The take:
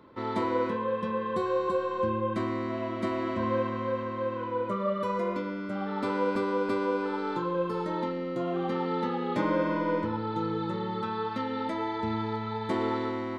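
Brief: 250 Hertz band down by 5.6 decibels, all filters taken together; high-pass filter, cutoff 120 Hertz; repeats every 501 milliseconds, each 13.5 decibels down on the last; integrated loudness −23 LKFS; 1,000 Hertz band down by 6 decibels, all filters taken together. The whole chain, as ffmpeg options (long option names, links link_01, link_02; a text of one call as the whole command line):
ffmpeg -i in.wav -af "highpass=120,equalizer=frequency=250:width_type=o:gain=-7,equalizer=frequency=1000:width_type=o:gain=-6.5,aecho=1:1:501|1002:0.211|0.0444,volume=11.5dB" out.wav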